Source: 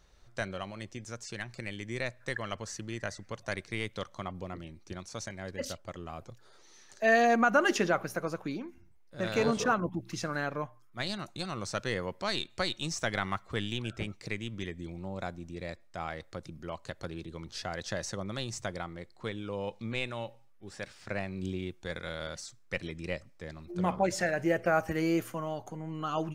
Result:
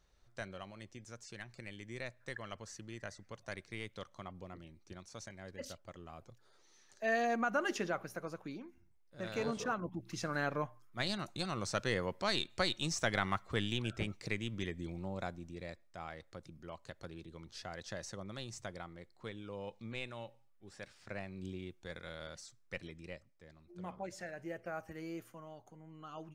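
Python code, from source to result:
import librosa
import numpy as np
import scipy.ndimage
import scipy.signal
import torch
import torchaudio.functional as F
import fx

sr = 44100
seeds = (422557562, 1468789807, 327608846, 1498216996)

y = fx.gain(x, sr, db=fx.line((9.78, -9.0), (10.47, -1.5), (14.98, -1.5), (15.98, -8.5), (22.79, -8.5), (23.43, -15.5)))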